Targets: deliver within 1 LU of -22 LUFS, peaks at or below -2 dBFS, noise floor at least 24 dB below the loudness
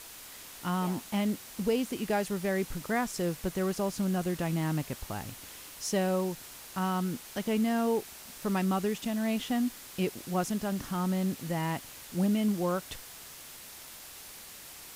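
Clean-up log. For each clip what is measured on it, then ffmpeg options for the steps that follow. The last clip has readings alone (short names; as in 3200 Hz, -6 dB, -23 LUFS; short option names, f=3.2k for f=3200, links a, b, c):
noise floor -48 dBFS; noise floor target -56 dBFS; loudness -31.5 LUFS; peak -16.5 dBFS; loudness target -22.0 LUFS
-> -af "afftdn=nr=8:nf=-48"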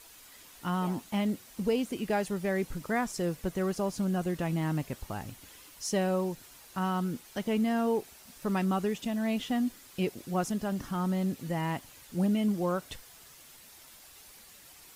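noise floor -54 dBFS; noise floor target -56 dBFS
-> -af "afftdn=nr=6:nf=-54"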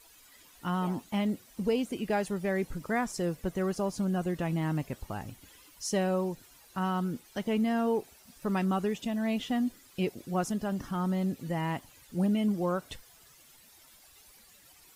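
noise floor -58 dBFS; loudness -32.0 LUFS; peak -16.5 dBFS; loudness target -22.0 LUFS
-> -af "volume=10dB"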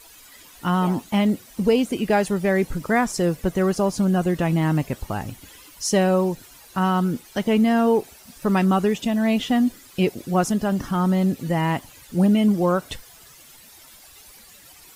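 loudness -22.0 LUFS; peak -6.5 dBFS; noise floor -48 dBFS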